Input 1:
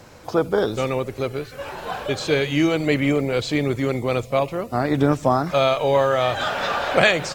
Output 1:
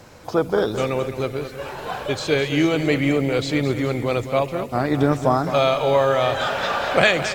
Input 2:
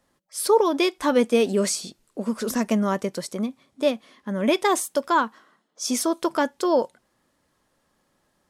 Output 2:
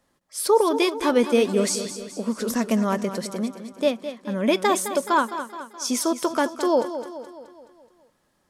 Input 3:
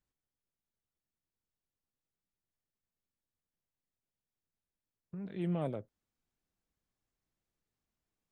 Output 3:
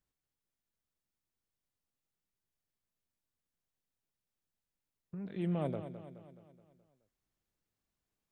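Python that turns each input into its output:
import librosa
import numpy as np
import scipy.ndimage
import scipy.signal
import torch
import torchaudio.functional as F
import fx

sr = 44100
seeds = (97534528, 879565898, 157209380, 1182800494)

y = fx.echo_feedback(x, sr, ms=212, feedback_pct=52, wet_db=-11)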